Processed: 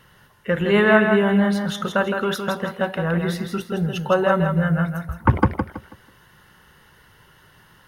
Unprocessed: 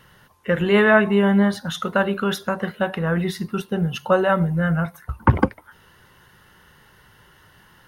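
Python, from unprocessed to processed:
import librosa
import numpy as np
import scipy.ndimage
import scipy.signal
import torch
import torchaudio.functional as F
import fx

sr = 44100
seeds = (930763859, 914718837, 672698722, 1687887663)

y = fx.echo_feedback(x, sr, ms=163, feedback_pct=30, wet_db=-6)
y = y * librosa.db_to_amplitude(-1.0)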